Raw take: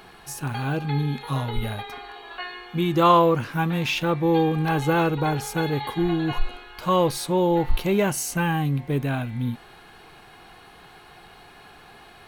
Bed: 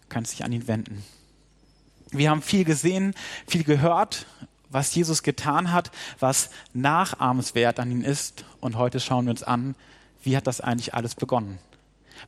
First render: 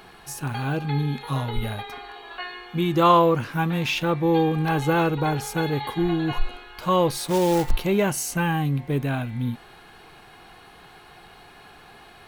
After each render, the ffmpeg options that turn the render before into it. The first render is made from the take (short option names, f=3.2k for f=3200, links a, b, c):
-filter_complex "[0:a]asettb=1/sr,asplit=3[a][b][c];[a]atrim=end=7.174[d];[b]atrim=start=7.17:end=7.71,asetpts=PTS-STARTPTS,afade=t=in:d=0.004:c=qsin,afade=t=out:st=0.536:d=0.004:c=qsin,acrusher=bits=3:mode=log:mix=0:aa=0.000001[e];[c]atrim=start=7.706[f];[d][e]acrossfade=d=0.004:c1=hsin:c2=qsin[g];[g][f]acrossfade=d=0.004:c1=qsin:c2=hsin"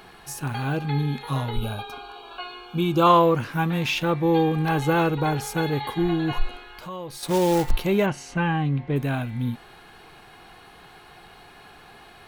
-filter_complex "[0:a]asettb=1/sr,asplit=3[a][b][c];[a]atrim=end=1.564[d];[b]atrim=start=1.56:end=3.07,asetpts=PTS-STARTPTS,afade=t=in:d=0.004:c=qsin,afade=t=out:st=1.506:d=0.004:c=qsin,asuperstop=centerf=1900:order=20:qfactor=3.7[e];[c]atrim=start=3.066[f];[d][e]acrossfade=d=0.004:c1=hsin:c2=qsin[g];[g][f]acrossfade=d=0.004:c1=qsin:c2=hsin,asettb=1/sr,asplit=3[h][i][j];[h]atrim=end=6.724[k];[i]atrim=start=6.72:end=7.23,asetpts=PTS-STARTPTS,afade=t=in:d=0.004:c=qsin,afade=t=out:st=0.506:d=0.004:c=qsin,acompressor=threshold=-39dB:ratio=2.5:attack=3.2:release=140:knee=1:detection=peak[l];[j]atrim=start=7.226[m];[k][l]acrossfade=d=0.004:c1=hsin:c2=qsin[n];[n][m]acrossfade=d=0.004:c1=qsin:c2=hsin,asplit=3[o][p][q];[o]afade=t=out:st=8.05:d=0.02[r];[p]lowpass=3.5k,afade=t=in:st=8.05:d=0.02,afade=t=out:st=8.95:d=0.02[s];[q]afade=t=in:st=8.95:d=0.02[t];[r][s][t]amix=inputs=3:normalize=0"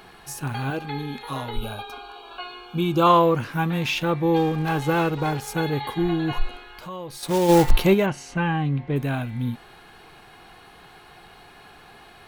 -filter_complex "[0:a]asettb=1/sr,asplit=3[a][b][c];[a]atrim=end=0.704[d];[b]atrim=start=0.7:end=2.3,asetpts=PTS-STARTPTS,afade=t=in:d=0.004:c=qsin,afade=t=out:st=1.596:d=0.004:c=qsin,equalizer=f=140:w=1.5:g=-10[e];[c]atrim=start=2.296[f];[d][e]acrossfade=d=0.004:c1=hsin:c2=qsin[g];[g][f]acrossfade=d=0.004:c1=qsin:c2=hsin,asettb=1/sr,asplit=3[h][i][j];[h]atrim=end=4.364[k];[i]atrim=start=4.36:end=5.48,asetpts=PTS-STARTPTS,afade=t=in:d=0.004:c=qsin,afade=t=out:st=1.116:d=0.004:c=qsin,aeval=exprs='sgn(val(0))*max(abs(val(0))-0.0106,0)':c=same[l];[j]atrim=start=5.476[m];[k][l]acrossfade=d=0.004:c1=hsin:c2=qsin[n];[n][m]acrossfade=d=0.004:c1=qsin:c2=hsin,asplit=3[o][p][q];[o]afade=t=out:st=7.48:d=0.02[r];[p]acontrast=65,afade=t=in:st=7.48:d=0.02,afade=t=out:st=7.93:d=0.02[s];[q]afade=t=in:st=7.93:d=0.02[t];[r][s][t]amix=inputs=3:normalize=0"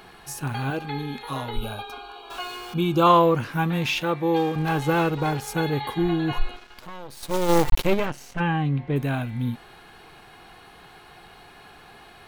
-filter_complex "[0:a]asettb=1/sr,asplit=3[a][b][c];[a]atrim=end=2.304[d];[b]atrim=start=2.3:end=2.74,asetpts=PTS-STARTPTS,afade=t=in:d=0.004:c=qsin,afade=t=out:st=0.436:d=0.004:c=qsin,aeval=exprs='val(0)+0.5*0.0141*sgn(val(0))':c=same[e];[c]atrim=start=2.736[f];[d][e]acrossfade=d=0.004:c1=hsin:c2=qsin[g];[g][f]acrossfade=d=0.004:c1=qsin:c2=hsin,asettb=1/sr,asplit=3[h][i][j];[h]atrim=end=4.014[k];[i]atrim=start=4.01:end=4.56,asetpts=PTS-STARTPTS,afade=t=in:d=0.004:c=qsin,afade=t=out:st=0.546:d=0.004:c=qsin,highpass=f=260:p=1[l];[j]atrim=start=4.556[m];[k][l]acrossfade=d=0.004:c1=hsin:c2=qsin[n];[n][m]acrossfade=d=0.004:c1=qsin:c2=hsin,asplit=3[o][p][q];[o]afade=t=out:st=6.54:d=0.02[r];[p]aeval=exprs='max(val(0),0)':c=same,afade=t=in:st=6.54:d=0.02,afade=t=out:st=8.39:d=0.02[s];[q]afade=t=in:st=8.39:d=0.02[t];[r][s][t]amix=inputs=3:normalize=0"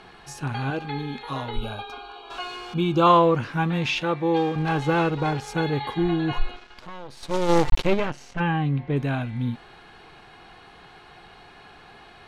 -af "lowpass=6.2k"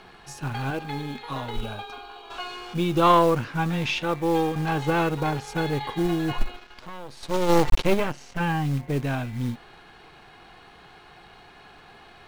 -filter_complex "[0:a]aeval=exprs='if(lt(val(0),0),0.708*val(0),val(0))':c=same,acrossover=split=640[a][b];[a]acrusher=bits=5:mode=log:mix=0:aa=0.000001[c];[c][b]amix=inputs=2:normalize=0"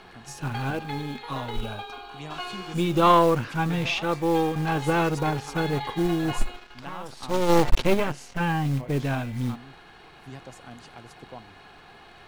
-filter_complex "[1:a]volume=-19.5dB[a];[0:a][a]amix=inputs=2:normalize=0"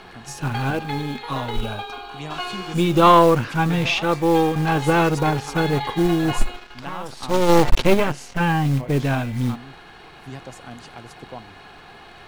-af "volume=5.5dB,alimiter=limit=-2dB:level=0:latency=1"